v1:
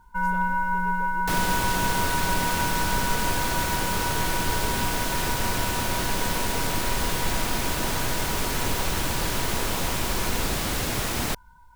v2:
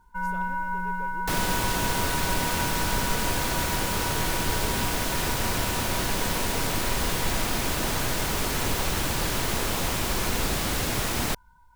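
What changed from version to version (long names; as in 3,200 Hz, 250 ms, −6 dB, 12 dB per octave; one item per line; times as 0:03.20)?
first sound −4.5 dB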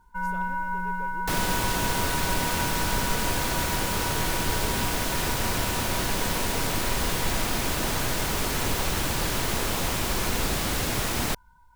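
nothing changed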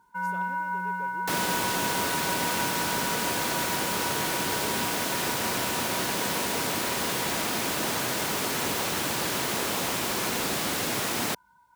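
master: add high-pass filter 180 Hz 12 dB per octave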